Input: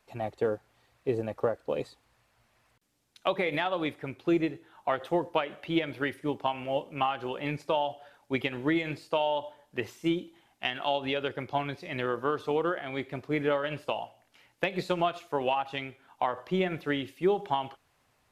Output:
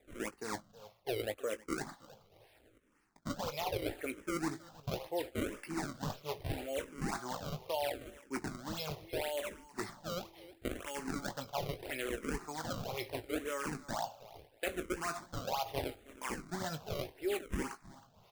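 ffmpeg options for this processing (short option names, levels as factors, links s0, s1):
-filter_complex "[0:a]lowshelf=f=280:g=-10,areverse,acompressor=threshold=0.0112:ratio=6,areverse,acrusher=samples=29:mix=1:aa=0.000001:lfo=1:lforange=46.4:lforate=1.9,asplit=2[s0][s1];[s1]adelay=19,volume=0.282[s2];[s0][s2]amix=inputs=2:normalize=0,asplit=2[s3][s4];[s4]aecho=0:1:318|636:0.119|0.0297[s5];[s3][s5]amix=inputs=2:normalize=0,asplit=2[s6][s7];[s7]afreqshift=-0.75[s8];[s6][s8]amix=inputs=2:normalize=1,volume=2.24"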